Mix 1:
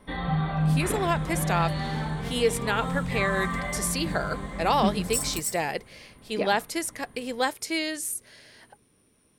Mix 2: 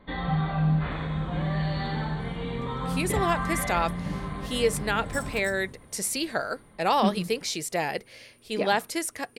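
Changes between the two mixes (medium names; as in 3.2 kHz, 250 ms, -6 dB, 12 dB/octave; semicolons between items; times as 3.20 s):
speech: entry +2.20 s; second sound: add tilt EQ -4 dB/octave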